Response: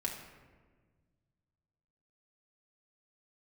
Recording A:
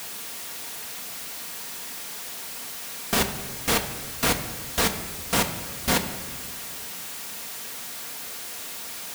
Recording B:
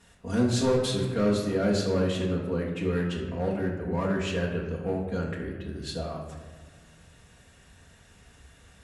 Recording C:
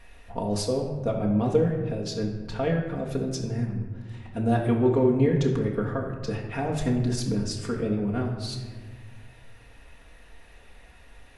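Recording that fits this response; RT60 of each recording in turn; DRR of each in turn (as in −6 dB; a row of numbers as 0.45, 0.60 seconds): C; 1.6, 1.5, 1.5 seconds; 4.5, −6.0, −2.0 decibels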